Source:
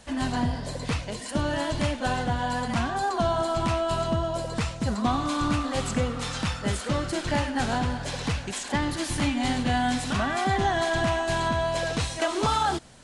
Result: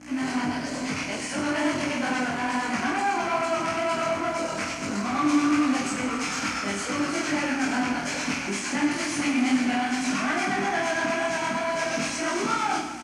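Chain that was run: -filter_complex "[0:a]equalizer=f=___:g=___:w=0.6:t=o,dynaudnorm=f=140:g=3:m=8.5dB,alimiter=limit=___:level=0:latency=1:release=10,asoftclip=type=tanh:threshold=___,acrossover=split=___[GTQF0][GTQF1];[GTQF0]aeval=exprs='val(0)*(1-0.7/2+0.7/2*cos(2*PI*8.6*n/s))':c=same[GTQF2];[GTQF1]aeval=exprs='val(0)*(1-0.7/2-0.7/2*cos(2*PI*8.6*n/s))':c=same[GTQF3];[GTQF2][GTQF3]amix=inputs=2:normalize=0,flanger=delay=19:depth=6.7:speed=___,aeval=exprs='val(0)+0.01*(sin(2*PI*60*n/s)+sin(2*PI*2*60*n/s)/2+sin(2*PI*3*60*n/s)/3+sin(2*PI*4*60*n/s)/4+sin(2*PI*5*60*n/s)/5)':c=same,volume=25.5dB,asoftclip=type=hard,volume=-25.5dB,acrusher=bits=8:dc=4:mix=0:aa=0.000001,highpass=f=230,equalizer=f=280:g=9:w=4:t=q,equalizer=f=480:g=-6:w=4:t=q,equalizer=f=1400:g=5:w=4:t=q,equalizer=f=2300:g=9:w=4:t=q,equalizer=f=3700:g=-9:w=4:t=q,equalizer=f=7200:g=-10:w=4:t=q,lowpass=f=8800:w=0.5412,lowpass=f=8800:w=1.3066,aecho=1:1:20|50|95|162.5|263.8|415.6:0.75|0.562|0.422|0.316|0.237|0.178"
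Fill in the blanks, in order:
6700, 12.5, -11.5dB, -14.5dB, 530, 2.3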